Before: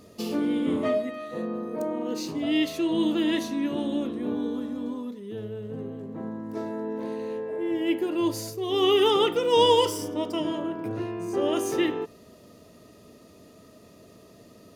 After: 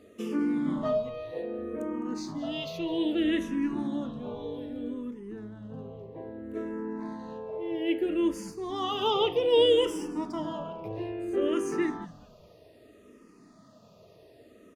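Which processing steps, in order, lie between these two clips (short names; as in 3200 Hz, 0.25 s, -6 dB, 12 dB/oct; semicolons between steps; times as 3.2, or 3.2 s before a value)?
LPF 3500 Hz 6 dB/oct; low shelf 80 Hz -11 dB; frequency-shifting echo 0.207 s, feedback 31%, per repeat -140 Hz, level -18.5 dB; endless phaser -0.62 Hz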